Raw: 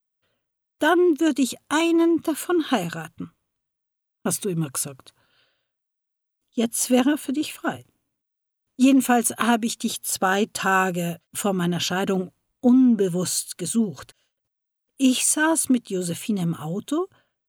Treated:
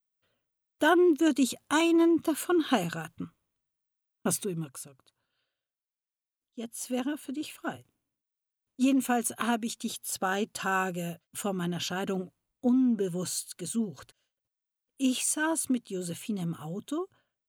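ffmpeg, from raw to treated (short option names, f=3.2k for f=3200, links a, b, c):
-af "volume=3.5dB,afade=t=out:st=4.32:d=0.42:silence=0.251189,afade=t=in:st=6.63:d=1.1:silence=0.421697"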